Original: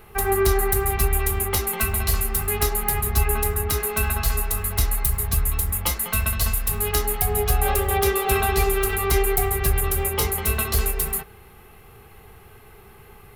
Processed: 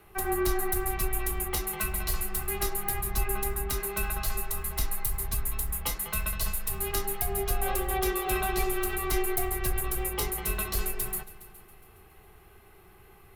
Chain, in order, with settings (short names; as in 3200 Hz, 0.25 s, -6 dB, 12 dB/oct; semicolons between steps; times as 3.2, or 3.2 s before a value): frequency shift -23 Hz; multi-head echo 0.138 s, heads all three, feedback 41%, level -23.5 dB; gain -7.5 dB